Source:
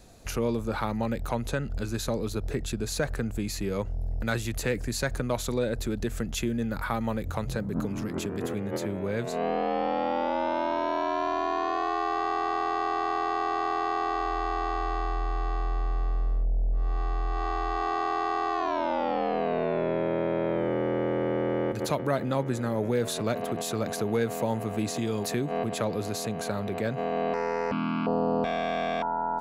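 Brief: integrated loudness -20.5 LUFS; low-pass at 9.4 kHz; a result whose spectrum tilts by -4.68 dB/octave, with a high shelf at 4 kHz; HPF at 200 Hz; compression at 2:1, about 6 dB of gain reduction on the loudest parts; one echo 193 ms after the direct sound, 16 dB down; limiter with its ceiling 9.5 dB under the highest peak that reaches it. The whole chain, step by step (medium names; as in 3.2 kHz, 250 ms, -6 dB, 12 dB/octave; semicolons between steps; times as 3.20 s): high-pass 200 Hz; low-pass 9.4 kHz; treble shelf 4 kHz -5.5 dB; compression 2:1, threshold -35 dBFS; peak limiter -29 dBFS; delay 193 ms -16 dB; trim +18 dB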